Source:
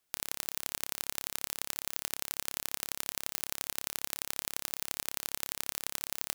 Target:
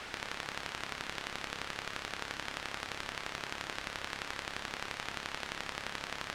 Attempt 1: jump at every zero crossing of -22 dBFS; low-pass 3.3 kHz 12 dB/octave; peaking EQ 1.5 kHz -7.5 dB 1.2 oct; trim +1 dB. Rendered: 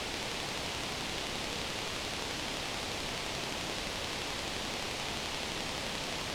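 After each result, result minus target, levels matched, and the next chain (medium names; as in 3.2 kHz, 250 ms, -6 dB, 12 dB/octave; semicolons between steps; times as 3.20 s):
jump at every zero crossing: distortion +11 dB; 2 kHz band -3.5 dB
jump at every zero crossing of -33.5 dBFS; low-pass 3.3 kHz 12 dB/octave; peaking EQ 1.5 kHz -7.5 dB 1.2 oct; trim +1 dB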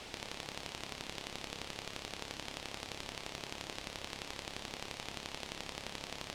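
2 kHz band -3.5 dB
jump at every zero crossing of -33.5 dBFS; low-pass 3.3 kHz 12 dB/octave; peaking EQ 1.5 kHz +3.5 dB 1.2 oct; trim +1 dB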